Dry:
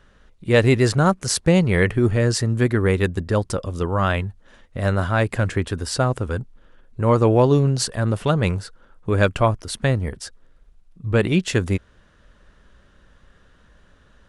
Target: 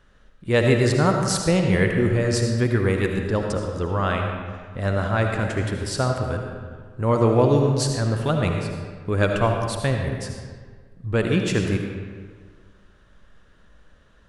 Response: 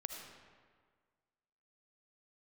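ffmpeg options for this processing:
-filter_complex "[0:a]asettb=1/sr,asplit=3[a][b][c];[a]atrim=end=3.224[d];[b]atrim=start=3.22:end=5.42,asetpts=PTS-STARTPTS,afade=t=in:d=0.004:c=qsin,afade=t=out:st=2.196:d=0.004:c=qsin,lowpass=8.6k[e];[c]atrim=start=5.416[f];[d][e]acrossfade=d=0.004:c1=hsin:c2=qsin[g];[g][f]acrossfade=d=0.004:c1=qsin:c2=hsin[h];[1:a]atrim=start_sample=2205[i];[h][i]afir=irnorm=-1:irlink=0"

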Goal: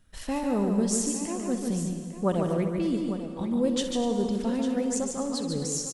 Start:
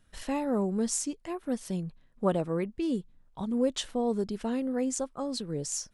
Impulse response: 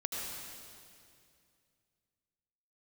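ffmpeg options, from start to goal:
-filter_complex "[0:a]bass=f=250:g=3,treble=f=4k:g=2,aecho=1:1:145|247|851:0.562|0.224|0.237,asplit=2[a][b];[1:a]atrim=start_sample=2205,adelay=64[c];[b][c]afir=irnorm=-1:irlink=0,volume=-11dB[d];[a][d]amix=inputs=2:normalize=0"

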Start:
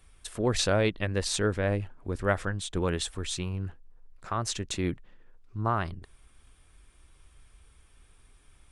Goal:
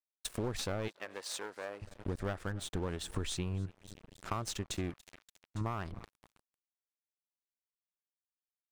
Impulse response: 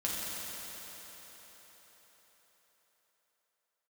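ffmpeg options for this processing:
-filter_complex "[0:a]aeval=exprs='clip(val(0),-1,0.0422)':c=same,asettb=1/sr,asplit=3[a][b][c];[a]atrim=end=3.094[d];[b]atrim=start=3.09:end=3.66,asetpts=PTS-STARTPTS,afade=t=in:d=0.004:c=qsin,afade=t=out:st=0.566:d=0.004:c=qsin,acontrast=80[e];[c]atrim=start=3.656[f];[d][e]acrossfade=d=0.004:c1=hsin:c2=qsin[g];[g][f]acrossfade=d=0.004:c1=qsin:c2=hsin,aecho=1:1:285|570|855|1140:0.0708|0.0404|0.023|0.0131,aeval=exprs='sgn(val(0))*max(abs(val(0))-0.00631,0)':c=same,asettb=1/sr,asplit=3[h][i][j];[h]atrim=end=4.904[k];[i]atrim=start=4.9:end=5.61,asetpts=PTS-STARTPTS,afade=t=in:d=0.004:c=qsin,afade=t=out:st=0.706:d=0.004:c=qsin,tiltshelf=f=730:g=-6.5[l];[j]atrim=start=5.606[m];[k][l]acrossfade=d=0.004:c1=hsin:c2=qsin[n];[n][m]acrossfade=d=0.004:c1=qsin:c2=hsin,acompressor=threshold=-39dB:ratio=6,asettb=1/sr,asplit=3[o][p][q];[o]atrim=end=0.884[r];[p]atrim=start=0.88:end=1.82,asetpts=PTS-STARTPTS,afade=t=in:d=0.004:c=qsin,afade=t=out:st=0.936:d=0.004:c=qsin,highpass=550[s];[q]atrim=start=1.816[t];[r][s]acrossfade=d=0.004:c1=hsin:c2=qsin[u];[u][t]acrossfade=d=0.004:c1=qsin:c2=hsin,adynamicequalizer=threshold=0.00112:dfrequency=1900:dqfactor=0.7:tfrequency=1900:tqfactor=0.7:attack=5:release=100:ratio=0.375:range=2:mode=cutabove:tftype=highshelf,volume=5.5dB"

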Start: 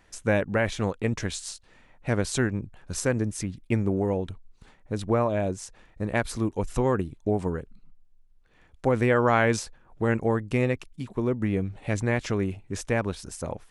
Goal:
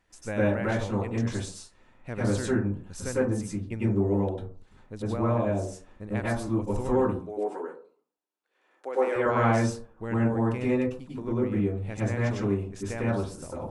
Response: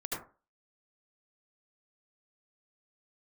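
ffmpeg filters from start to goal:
-filter_complex "[0:a]asettb=1/sr,asplit=3[a][b][c];[a]atrim=end=7.074[d];[b]atrim=start=7.07:end=9.16,asetpts=PTS-STARTPTS,afade=t=in:d=0.004:c=qsin,afade=t=out:st=2.086:d=0.004:c=qsin,highpass=f=360:w=0.5412,highpass=f=360:w=1.3066[e];[c]atrim=start=9.156[f];[d][e]acrossfade=d=0.004:c1=hsin:c2=qsin[g];[g][f]acrossfade=d=0.004:c1=qsin:c2=hsin[h];[1:a]atrim=start_sample=2205,asetrate=33075,aresample=44100[i];[h][i]afir=irnorm=-1:irlink=0,volume=-8dB"

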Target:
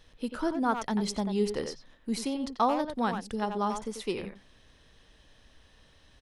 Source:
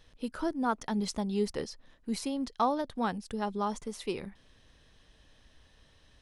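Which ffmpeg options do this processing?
-filter_complex "[0:a]bandreject=f=50:t=h:w=6,bandreject=f=100:t=h:w=6,bandreject=f=150:t=h:w=6,asplit=2[a][b];[b]adelay=90,highpass=300,lowpass=3.4k,asoftclip=type=hard:threshold=-24dB,volume=-6dB[c];[a][c]amix=inputs=2:normalize=0,volume=2dB"

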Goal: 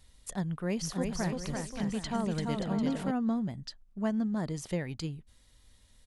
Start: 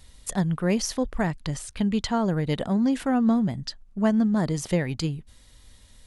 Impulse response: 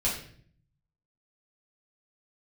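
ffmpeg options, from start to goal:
-filter_complex "[0:a]asplit=3[a][b][c];[a]afade=t=out:st=0.81:d=0.02[d];[b]aecho=1:1:340|578|744.6|861.2|942.9:0.631|0.398|0.251|0.158|0.1,afade=t=in:st=0.81:d=0.02,afade=t=out:st=3.1:d=0.02[e];[c]afade=t=in:st=3.1:d=0.02[f];[d][e][f]amix=inputs=3:normalize=0,volume=-9dB"

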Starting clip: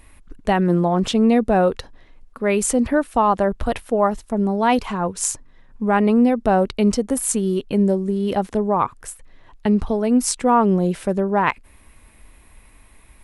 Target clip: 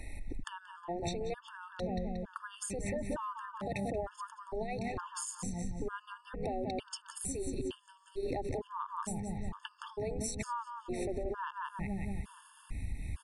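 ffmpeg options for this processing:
-filter_complex "[0:a]asplit=2[a][b];[b]adelay=181,lowpass=f=4.6k:p=1,volume=-10dB,asplit=2[c][d];[d]adelay=181,lowpass=f=4.6k:p=1,volume=0.47,asplit=2[e][f];[f]adelay=181,lowpass=f=4.6k:p=1,volume=0.47,asplit=2[g][h];[h]adelay=181,lowpass=f=4.6k:p=1,volume=0.47,asplit=2[i][j];[j]adelay=181,lowpass=f=4.6k:p=1,volume=0.47[k];[c][e][g][i][k]amix=inputs=5:normalize=0[l];[a][l]amix=inputs=2:normalize=0,acrossover=split=160[m][n];[n]acompressor=threshold=-22dB:ratio=5[o];[m][o]amix=inputs=2:normalize=0,alimiter=limit=-17dB:level=0:latency=1:release=62,asubboost=boost=8:cutoff=170,afftfilt=real='re*lt(hypot(re,im),0.398)':imag='im*lt(hypot(re,im),0.398)':win_size=1024:overlap=0.75,acompressor=threshold=-36dB:ratio=8,aresample=22050,aresample=44100,afftfilt=real='re*gt(sin(2*PI*1.1*pts/sr)*(1-2*mod(floor(b*sr/1024/900),2)),0)':imag='im*gt(sin(2*PI*1.1*pts/sr)*(1-2*mod(floor(b*sr/1024/900),2)),0)':win_size=1024:overlap=0.75,volume=4dB"

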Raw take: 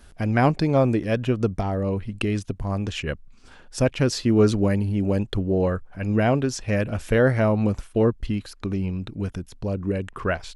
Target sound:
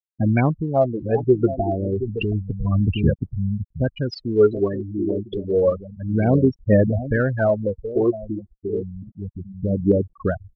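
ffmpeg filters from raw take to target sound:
-filter_complex "[0:a]asettb=1/sr,asplit=3[a][b][c];[a]atrim=end=1.014[d];[b]atrim=start=1.01:end=3.1,asetpts=PTS-STARTPTS,afade=t=in:d=0.004:c=qsin,afade=t=out:st=2.086:d=0.004:c=qsin,bass=f=250:g=9,treble=f=4k:g=0[e];[c]atrim=start=3.096[f];[d][e]acrossfade=d=0.004:c1=hsin:c2=qsin[g];[g][f]acrossfade=d=0.004:c1=qsin:c2=hsin,aecho=1:1:724:0.316,afftfilt=real='re*gte(hypot(re,im),0.141)':imag='im*gte(hypot(re,im),0.141)':win_size=1024:overlap=0.75,highpass=f=170:p=1,aphaser=in_gain=1:out_gain=1:delay=2.9:decay=0.71:speed=0.3:type=sinusoidal,lowpass=f=5.4k:w=0.5412,lowpass=f=5.4k:w=1.3066"

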